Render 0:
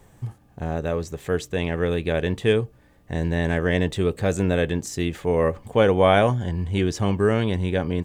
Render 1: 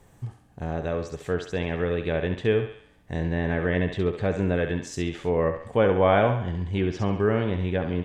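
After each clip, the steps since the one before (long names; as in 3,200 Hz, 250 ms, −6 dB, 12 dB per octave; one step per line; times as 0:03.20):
feedback echo with a high-pass in the loop 68 ms, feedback 50%, high-pass 430 Hz, level −7 dB
treble cut that deepens with the level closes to 2,500 Hz, closed at −17.5 dBFS
level −3 dB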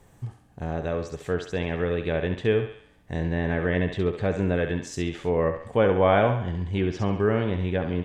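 no processing that can be heard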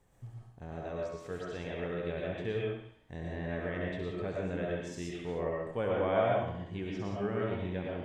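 tuned comb filter 58 Hz, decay 0.91 s, harmonics all, mix 50%
convolution reverb RT60 0.45 s, pre-delay 75 ms, DRR −2 dB
level −8.5 dB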